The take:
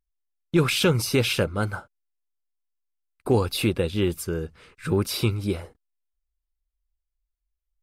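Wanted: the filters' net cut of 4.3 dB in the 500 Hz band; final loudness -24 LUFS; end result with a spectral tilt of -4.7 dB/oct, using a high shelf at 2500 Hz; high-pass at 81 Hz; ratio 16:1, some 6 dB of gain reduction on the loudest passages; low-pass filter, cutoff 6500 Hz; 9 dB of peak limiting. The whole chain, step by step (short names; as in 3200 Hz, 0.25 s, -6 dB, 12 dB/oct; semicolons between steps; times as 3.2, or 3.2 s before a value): HPF 81 Hz; LPF 6500 Hz; bell 500 Hz -5.5 dB; high shelf 2500 Hz -7.5 dB; compressor 16:1, threshold -23 dBFS; gain +10 dB; limiter -13 dBFS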